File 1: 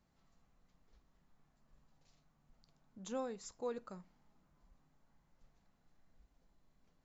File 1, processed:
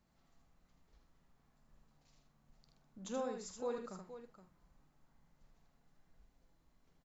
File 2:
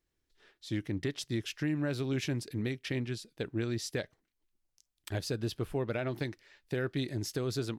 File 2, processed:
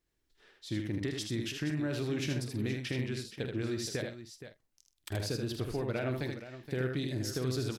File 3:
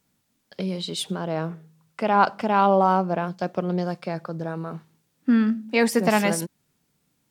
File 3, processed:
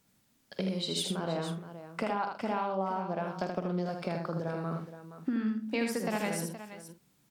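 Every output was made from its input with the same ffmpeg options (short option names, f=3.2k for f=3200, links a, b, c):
-filter_complex "[0:a]acompressor=threshold=-30dB:ratio=10,asplit=2[a][b];[b]adelay=47,volume=-11.5dB[c];[a][c]amix=inputs=2:normalize=0,asplit=2[d][e];[e]aecho=0:1:78|471:0.562|0.251[f];[d][f]amix=inputs=2:normalize=0"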